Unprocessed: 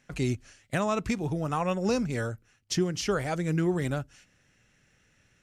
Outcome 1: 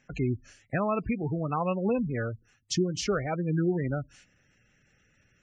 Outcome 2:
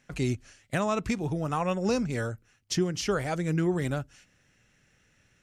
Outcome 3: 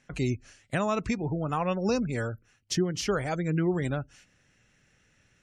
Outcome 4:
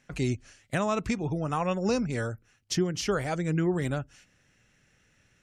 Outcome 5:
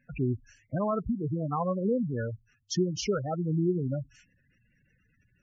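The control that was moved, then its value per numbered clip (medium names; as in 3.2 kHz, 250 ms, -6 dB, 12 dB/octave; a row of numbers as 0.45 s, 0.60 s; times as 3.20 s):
spectral gate, under each frame's peak: -20 dB, -60 dB, -35 dB, -45 dB, -10 dB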